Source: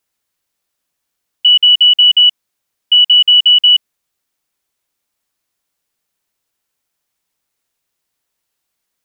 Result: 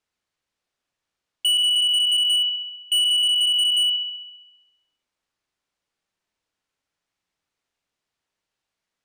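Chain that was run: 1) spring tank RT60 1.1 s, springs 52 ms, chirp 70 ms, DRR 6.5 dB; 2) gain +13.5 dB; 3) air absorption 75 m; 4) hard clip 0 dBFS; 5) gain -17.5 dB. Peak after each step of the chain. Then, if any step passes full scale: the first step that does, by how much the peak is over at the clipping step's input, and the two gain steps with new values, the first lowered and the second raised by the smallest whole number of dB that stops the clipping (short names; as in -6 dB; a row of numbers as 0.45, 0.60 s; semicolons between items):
-3.5, +10.0, +8.5, 0.0, -17.5 dBFS; step 2, 8.5 dB; step 2 +4.5 dB, step 5 -8.5 dB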